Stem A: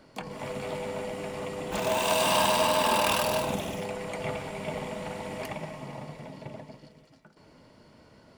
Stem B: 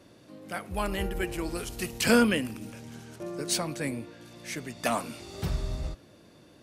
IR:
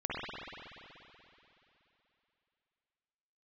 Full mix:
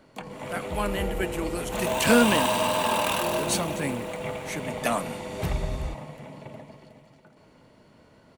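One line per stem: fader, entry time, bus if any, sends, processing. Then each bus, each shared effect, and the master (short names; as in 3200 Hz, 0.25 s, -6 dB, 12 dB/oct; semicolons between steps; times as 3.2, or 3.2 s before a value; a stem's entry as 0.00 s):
-0.5 dB, 0.00 s, no send, echo send -12 dB, dry
+2.0 dB, 0.00 s, no send, no echo send, expander -41 dBFS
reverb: off
echo: feedback echo 0.364 s, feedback 49%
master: bell 5000 Hz -7.5 dB 0.29 oct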